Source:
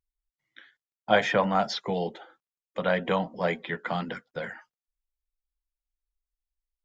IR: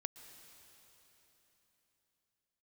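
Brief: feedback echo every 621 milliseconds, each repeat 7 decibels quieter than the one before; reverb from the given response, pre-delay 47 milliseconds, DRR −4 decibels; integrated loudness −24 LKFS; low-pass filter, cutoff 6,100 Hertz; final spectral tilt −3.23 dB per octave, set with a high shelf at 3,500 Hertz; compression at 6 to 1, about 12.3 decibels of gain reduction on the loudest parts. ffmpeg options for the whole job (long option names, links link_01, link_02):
-filter_complex "[0:a]lowpass=6100,highshelf=frequency=3500:gain=3.5,acompressor=threshold=-29dB:ratio=6,aecho=1:1:621|1242|1863|2484|3105:0.447|0.201|0.0905|0.0407|0.0183,asplit=2[link_01][link_02];[1:a]atrim=start_sample=2205,adelay=47[link_03];[link_02][link_03]afir=irnorm=-1:irlink=0,volume=6.5dB[link_04];[link_01][link_04]amix=inputs=2:normalize=0,volume=5.5dB"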